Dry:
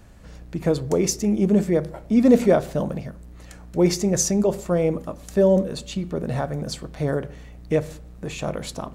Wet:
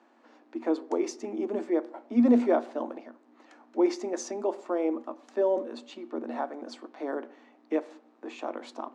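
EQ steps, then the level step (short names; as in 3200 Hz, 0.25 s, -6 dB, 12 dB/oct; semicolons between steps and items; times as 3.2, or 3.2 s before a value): air absorption 140 m; dynamic EQ 9400 Hz, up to +5 dB, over -59 dBFS, Q 2.2; rippled Chebyshev high-pass 230 Hz, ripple 9 dB; 0.0 dB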